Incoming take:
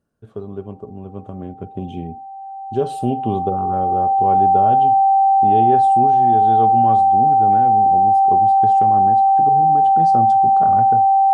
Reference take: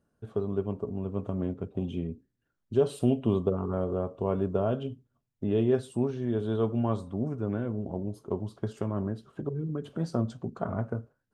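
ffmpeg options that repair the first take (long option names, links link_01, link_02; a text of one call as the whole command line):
ffmpeg -i in.wav -af "bandreject=frequency=780:width=30,asetnsamples=nb_out_samples=441:pad=0,asendcmd='1.6 volume volume -4dB',volume=0dB" out.wav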